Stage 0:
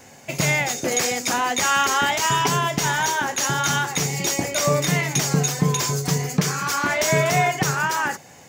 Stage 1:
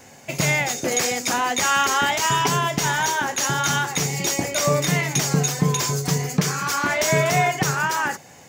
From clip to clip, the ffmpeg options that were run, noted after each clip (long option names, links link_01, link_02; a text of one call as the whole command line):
ffmpeg -i in.wav -af anull out.wav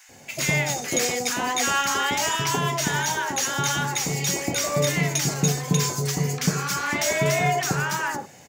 ffmpeg -i in.wav -filter_complex "[0:a]acontrast=57,acrossover=split=1100[link_01][link_02];[link_01]adelay=90[link_03];[link_03][link_02]amix=inputs=2:normalize=0,volume=-7.5dB" out.wav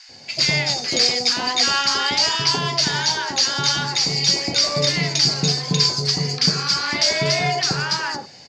ffmpeg -i in.wav -af "lowpass=frequency=4700:width_type=q:width=11" out.wav